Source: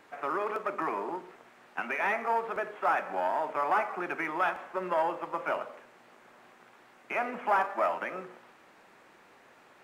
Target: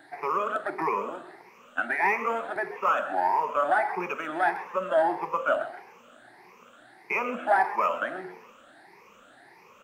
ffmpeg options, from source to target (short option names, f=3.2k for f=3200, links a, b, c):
-filter_complex "[0:a]afftfilt=real='re*pow(10,18/40*sin(2*PI*(0.81*log(max(b,1)*sr/1024/100)/log(2)-(1.6)*(pts-256)/sr)))':imag='im*pow(10,18/40*sin(2*PI*(0.81*log(max(b,1)*sr/1024/100)/log(2)-(1.6)*(pts-256)/sr)))':win_size=1024:overlap=0.75,asplit=4[a][b][c][d];[b]adelay=131,afreqshift=80,volume=-15dB[e];[c]adelay=262,afreqshift=160,volume=-24.9dB[f];[d]adelay=393,afreqshift=240,volume=-34.8dB[g];[a][e][f][g]amix=inputs=4:normalize=0"